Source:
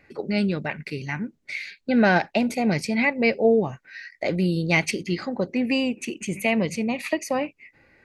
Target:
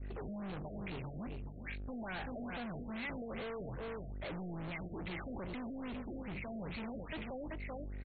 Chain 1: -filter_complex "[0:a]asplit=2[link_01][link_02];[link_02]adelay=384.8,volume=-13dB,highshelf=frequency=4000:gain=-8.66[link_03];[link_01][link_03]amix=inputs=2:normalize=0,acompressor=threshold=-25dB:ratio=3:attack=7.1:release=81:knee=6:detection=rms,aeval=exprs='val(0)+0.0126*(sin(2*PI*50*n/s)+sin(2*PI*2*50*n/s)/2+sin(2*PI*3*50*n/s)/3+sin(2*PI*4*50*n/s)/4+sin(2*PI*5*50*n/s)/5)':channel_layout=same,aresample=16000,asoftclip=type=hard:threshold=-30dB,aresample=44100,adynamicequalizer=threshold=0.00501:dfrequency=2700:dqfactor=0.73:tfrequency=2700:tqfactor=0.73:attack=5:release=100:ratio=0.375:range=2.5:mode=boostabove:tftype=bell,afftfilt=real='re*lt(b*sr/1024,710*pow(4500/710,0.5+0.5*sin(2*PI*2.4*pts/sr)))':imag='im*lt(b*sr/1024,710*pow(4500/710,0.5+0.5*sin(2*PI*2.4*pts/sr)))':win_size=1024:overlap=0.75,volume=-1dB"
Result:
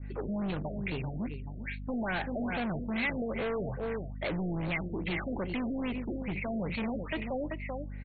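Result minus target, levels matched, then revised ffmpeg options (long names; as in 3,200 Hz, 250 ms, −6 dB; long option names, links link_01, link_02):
hard clipping: distortion −5 dB
-filter_complex "[0:a]asplit=2[link_01][link_02];[link_02]adelay=384.8,volume=-13dB,highshelf=frequency=4000:gain=-8.66[link_03];[link_01][link_03]amix=inputs=2:normalize=0,acompressor=threshold=-25dB:ratio=3:attack=7.1:release=81:knee=6:detection=rms,aeval=exprs='val(0)+0.0126*(sin(2*PI*50*n/s)+sin(2*PI*2*50*n/s)/2+sin(2*PI*3*50*n/s)/3+sin(2*PI*4*50*n/s)/4+sin(2*PI*5*50*n/s)/5)':channel_layout=same,aresample=16000,asoftclip=type=hard:threshold=-40.5dB,aresample=44100,adynamicequalizer=threshold=0.00501:dfrequency=2700:dqfactor=0.73:tfrequency=2700:tqfactor=0.73:attack=5:release=100:ratio=0.375:range=2.5:mode=boostabove:tftype=bell,afftfilt=real='re*lt(b*sr/1024,710*pow(4500/710,0.5+0.5*sin(2*PI*2.4*pts/sr)))':imag='im*lt(b*sr/1024,710*pow(4500/710,0.5+0.5*sin(2*PI*2.4*pts/sr)))':win_size=1024:overlap=0.75,volume=-1dB"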